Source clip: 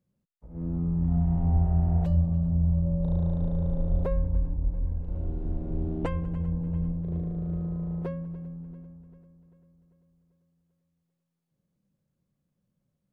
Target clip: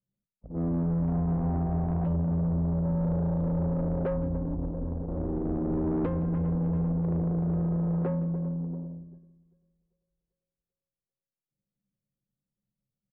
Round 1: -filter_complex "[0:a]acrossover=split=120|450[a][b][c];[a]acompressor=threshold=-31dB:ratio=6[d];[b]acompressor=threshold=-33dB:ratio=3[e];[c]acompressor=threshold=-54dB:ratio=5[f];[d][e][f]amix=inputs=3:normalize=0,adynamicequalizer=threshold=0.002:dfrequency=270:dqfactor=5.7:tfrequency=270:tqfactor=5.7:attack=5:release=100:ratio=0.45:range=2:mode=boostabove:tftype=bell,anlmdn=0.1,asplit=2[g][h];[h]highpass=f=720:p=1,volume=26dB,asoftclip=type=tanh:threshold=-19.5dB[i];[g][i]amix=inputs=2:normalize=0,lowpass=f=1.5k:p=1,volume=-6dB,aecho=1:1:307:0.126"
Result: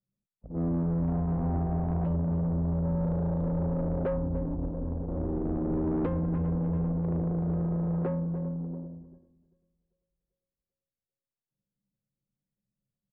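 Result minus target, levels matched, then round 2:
echo 0.141 s late
-filter_complex "[0:a]acrossover=split=120|450[a][b][c];[a]acompressor=threshold=-31dB:ratio=6[d];[b]acompressor=threshold=-33dB:ratio=3[e];[c]acompressor=threshold=-54dB:ratio=5[f];[d][e][f]amix=inputs=3:normalize=0,adynamicequalizer=threshold=0.002:dfrequency=270:dqfactor=5.7:tfrequency=270:tqfactor=5.7:attack=5:release=100:ratio=0.45:range=2:mode=boostabove:tftype=bell,anlmdn=0.1,asplit=2[g][h];[h]highpass=f=720:p=1,volume=26dB,asoftclip=type=tanh:threshold=-19.5dB[i];[g][i]amix=inputs=2:normalize=0,lowpass=f=1.5k:p=1,volume=-6dB,aecho=1:1:166:0.126"

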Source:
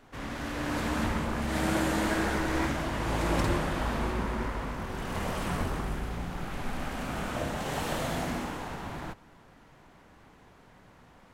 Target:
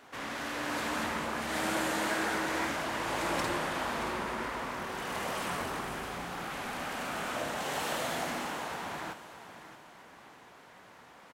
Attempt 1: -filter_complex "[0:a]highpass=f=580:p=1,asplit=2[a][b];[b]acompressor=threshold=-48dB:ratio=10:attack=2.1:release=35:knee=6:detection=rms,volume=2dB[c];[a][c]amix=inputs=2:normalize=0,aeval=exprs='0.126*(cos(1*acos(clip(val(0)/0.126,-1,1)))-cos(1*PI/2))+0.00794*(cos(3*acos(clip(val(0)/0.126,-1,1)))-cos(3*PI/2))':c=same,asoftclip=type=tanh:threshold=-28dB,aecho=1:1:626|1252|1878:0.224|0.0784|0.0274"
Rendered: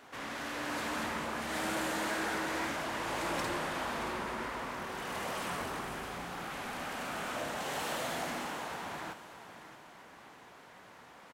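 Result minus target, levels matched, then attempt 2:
soft clip: distortion +13 dB; compressor: peak gain reduction +6 dB
-filter_complex "[0:a]highpass=f=580:p=1,asplit=2[a][b];[b]acompressor=threshold=-41.5dB:ratio=10:attack=2.1:release=35:knee=6:detection=rms,volume=2dB[c];[a][c]amix=inputs=2:normalize=0,aeval=exprs='0.126*(cos(1*acos(clip(val(0)/0.126,-1,1)))-cos(1*PI/2))+0.00794*(cos(3*acos(clip(val(0)/0.126,-1,1)))-cos(3*PI/2))':c=same,asoftclip=type=tanh:threshold=-18.5dB,aecho=1:1:626|1252|1878:0.224|0.0784|0.0274"

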